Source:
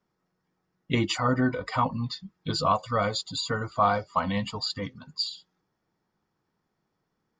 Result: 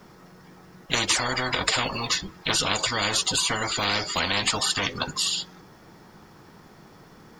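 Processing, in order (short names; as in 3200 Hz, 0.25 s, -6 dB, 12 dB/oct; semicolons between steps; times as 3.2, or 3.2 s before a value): spectral compressor 10:1; gain +5 dB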